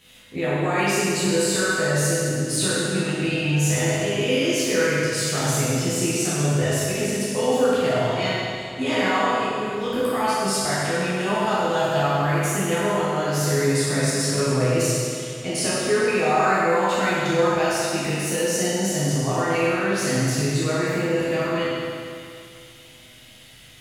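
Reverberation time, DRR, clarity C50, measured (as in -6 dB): 2.4 s, -11.5 dB, -4.5 dB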